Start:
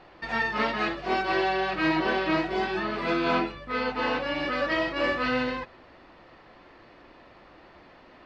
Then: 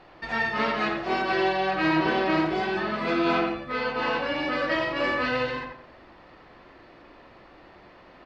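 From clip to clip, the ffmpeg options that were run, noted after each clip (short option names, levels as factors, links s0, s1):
-filter_complex "[0:a]asplit=2[s0][s1];[s1]adelay=89,lowpass=f=2400:p=1,volume=0.668,asplit=2[s2][s3];[s3]adelay=89,lowpass=f=2400:p=1,volume=0.33,asplit=2[s4][s5];[s5]adelay=89,lowpass=f=2400:p=1,volume=0.33,asplit=2[s6][s7];[s7]adelay=89,lowpass=f=2400:p=1,volume=0.33[s8];[s0][s2][s4][s6][s8]amix=inputs=5:normalize=0"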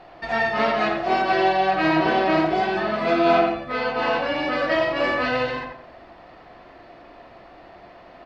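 -af "equalizer=f=690:w=5.7:g=11,volume=1.33"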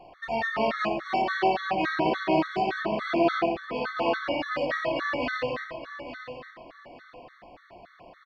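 -af "aecho=1:1:865|1730|2595:0.282|0.0761|0.0205,afftfilt=real='re*gt(sin(2*PI*3.5*pts/sr)*(1-2*mod(floor(b*sr/1024/1100),2)),0)':imag='im*gt(sin(2*PI*3.5*pts/sr)*(1-2*mod(floor(b*sr/1024/1100),2)),0)':win_size=1024:overlap=0.75,volume=0.708"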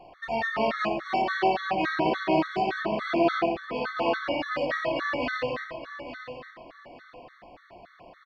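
-af anull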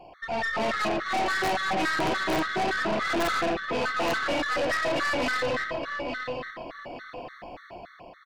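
-af "dynaudnorm=f=190:g=7:m=2.24,aeval=exprs='(mod(2.24*val(0)+1,2)-1)/2.24':c=same,aeval=exprs='(tanh(20*val(0)+0.3)-tanh(0.3))/20':c=same,volume=1.26"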